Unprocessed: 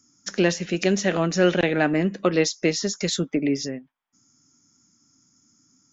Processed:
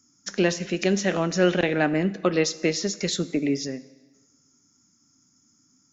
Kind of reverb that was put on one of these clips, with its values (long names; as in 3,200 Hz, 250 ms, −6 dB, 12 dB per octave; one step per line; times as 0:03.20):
dense smooth reverb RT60 1.3 s, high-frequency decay 0.9×, DRR 15 dB
level −1.5 dB